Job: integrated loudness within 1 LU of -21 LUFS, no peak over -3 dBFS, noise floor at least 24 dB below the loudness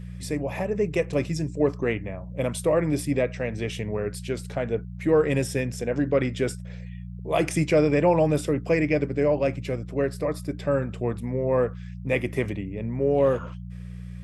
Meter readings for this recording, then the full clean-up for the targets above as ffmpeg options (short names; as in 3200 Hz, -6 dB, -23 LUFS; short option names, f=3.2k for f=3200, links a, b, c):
hum 60 Hz; harmonics up to 180 Hz; hum level -35 dBFS; loudness -25.5 LUFS; peak -9.5 dBFS; loudness target -21.0 LUFS
-> -af "bandreject=f=60:t=h:w=4,bandreject=f=120:t=h:w=4,bandreject=f=180:t=h:w=4"
-af "volume=4.5dB"